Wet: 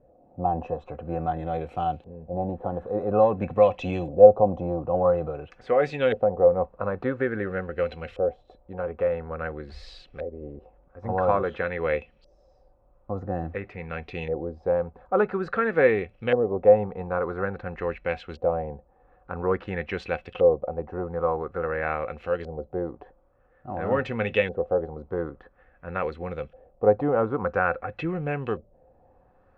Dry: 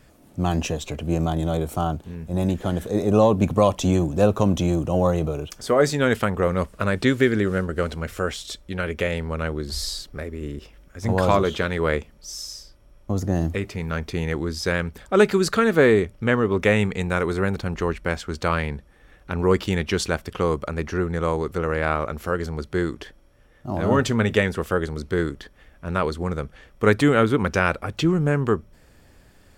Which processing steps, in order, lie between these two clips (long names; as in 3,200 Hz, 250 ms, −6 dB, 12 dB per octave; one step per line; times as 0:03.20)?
hollow resonant body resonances 520/740/2,600/4,000 Hz, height 14 dB, ringing for 70 ms
auto-filter low-pass saw up 0.49 Hz 580–3,100 Hz
level −10 dB